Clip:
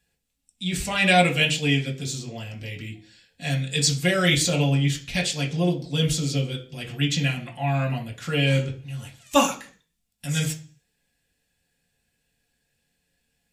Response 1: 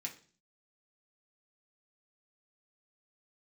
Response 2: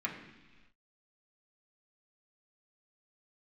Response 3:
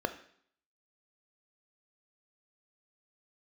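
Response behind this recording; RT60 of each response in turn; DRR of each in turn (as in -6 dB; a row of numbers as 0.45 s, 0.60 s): 1; 0.40 s, no single decay rate, 0.60 s; -0.5 dB, -3.0 dB, 9.0 dB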